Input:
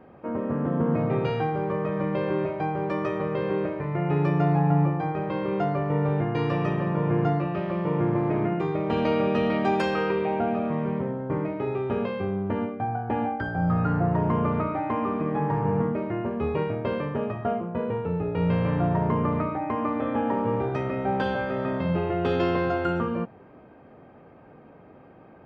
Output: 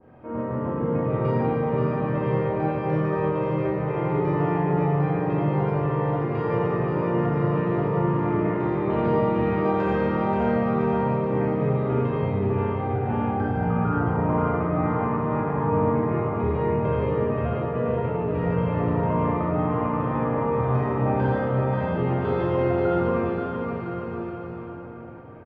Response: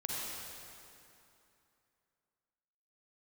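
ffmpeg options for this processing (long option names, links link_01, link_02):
-filter_complex "[0:a]lowpass=frequency=3600:poles=1,lowshelf=frequency=140:width_type=q:width=1.5:gain=6,bandreject=frequency=50:width_type=h:width=6,bandreject=frequency=100:width_type=h:width=6,bandreject=frequency=150:width_type=h:width=6,acrossover=split=1500[link_01][link_02];[link_02]acompressor=threshold=-54dB:ratio=6[link_03];[link_01][link_03]amix=inputs=2:normalize=0,aecho=1:1:530|1007|1436|1823|2170:0.631|0.398|0.251|0.158|0.1[link_04];[1:a]atrim=start_sample=2205,asetrate=83790,aresample=44100[link_05];[link_04][link_05]afir=irnorm=-1:irlink=0,adynamicequalizer=threshold=0.00631:dfrequency=1600:dqfactor=0.7:tfrequency=1600:tqfactor=0.7:attack=5:release=100:ratio=0.375:range=3:mode=boostabove:tftype=highshelf,volume=3dB"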